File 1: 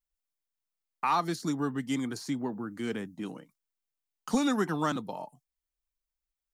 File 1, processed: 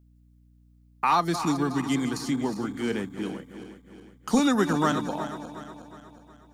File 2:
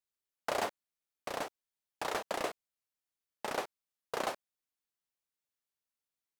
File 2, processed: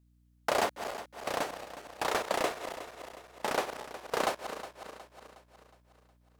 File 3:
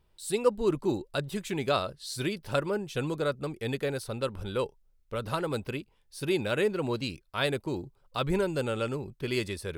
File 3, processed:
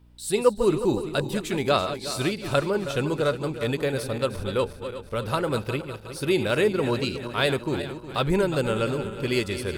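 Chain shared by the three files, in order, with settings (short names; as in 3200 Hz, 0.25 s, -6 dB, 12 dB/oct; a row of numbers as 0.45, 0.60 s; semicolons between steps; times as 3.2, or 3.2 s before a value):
regenerating reverse delay 0.182 s, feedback 69%, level -10.5 dB; hum 60 Hz, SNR 29 dB; gain +5 dB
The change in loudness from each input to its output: +5.0, +4.5, +5.5 LU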